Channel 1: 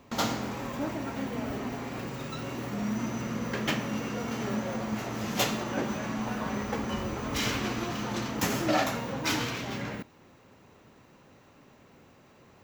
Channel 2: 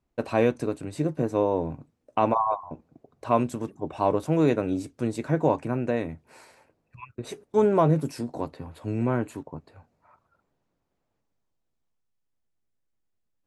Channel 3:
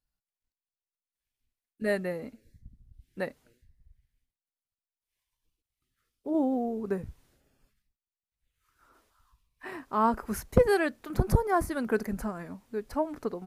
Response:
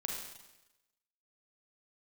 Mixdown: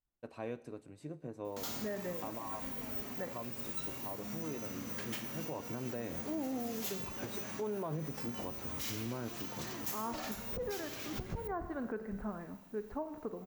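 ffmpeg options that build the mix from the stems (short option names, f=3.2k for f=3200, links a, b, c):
-filter_complex "[0:a]aemphasis=mode=production:type=75fm,asoftclip=type=tanh:threshold=-10.5dB,adelay=1450,volume=-11.5dB[a];[1:a]adelay=50,volume=-7.5dB,afade=t=in:st=5.41:d=0.3:silence=0.251189,asplit=2[b][c];[c]volume=-16.5dB[d];[2:a]lowpass=1.7k,volume=-8.5dB,asplit=2[e][f];[f]volume=-7dB[g];[3:a]atrim=start_sample=2205[h];[d][g]amix=inputs=2:normalize=0[i];[i][h]afir=irnorm=-1:irlink=0[j];[a][b][e][j]amix=inputs=4:normalize=0,alimiter=level_in=5.5dB:limit=-24dB:level=0:latency=1:release=241,volume=-5.5dB"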